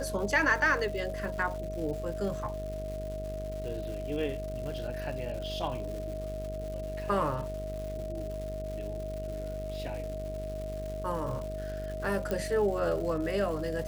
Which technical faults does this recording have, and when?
buzz 50 Hz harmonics 15 -39 dBFS
crackle 300 per s -39 dBFS
whine 630 Hz -37 dBFS
12.31 s: pop -18 dBFS

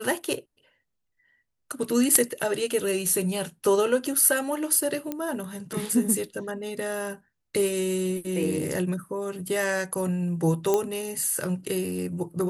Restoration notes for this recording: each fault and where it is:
5.12 s: pop -16 dBFS
10.74 s: pop -10 dBFS

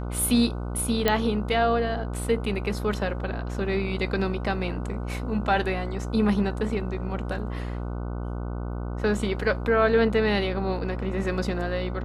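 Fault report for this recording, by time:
buzz 60 Hz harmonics 25 -31 dBFS
1.08 s: pop -7 dBFS

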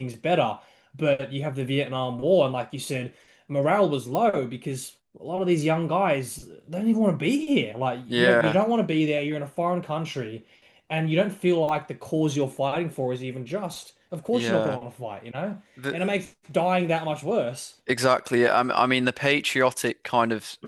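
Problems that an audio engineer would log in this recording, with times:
4.15 s: pop -14 dBFS
11.69 s: dropout 3.9 ms

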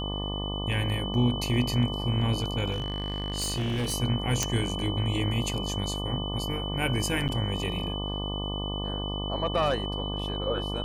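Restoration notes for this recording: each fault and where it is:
buzz 50 Hz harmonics 24 -33 dBFS
whine 3 kHz -35 dBFS
2.71–3.94 s: clipped -25.5 dBFS
4.43 s: pop -9 dBFS
7.28–7.29 s: dropout 8.3 ms

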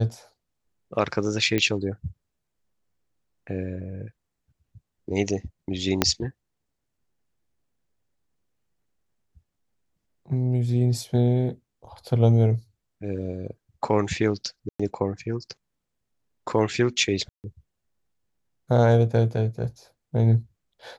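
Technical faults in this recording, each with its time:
1.58 s: pop -11 dBFS
6.02 s: pop -2 dBFS
14.69–14.79 s: dropout 105 ms
17.29–17.44 s: dropout 149 ms

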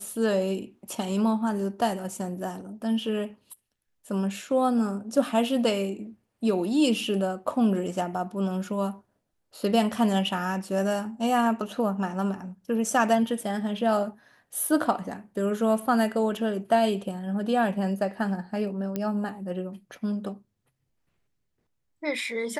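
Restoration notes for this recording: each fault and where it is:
18.96 s: pop -16 dBFS

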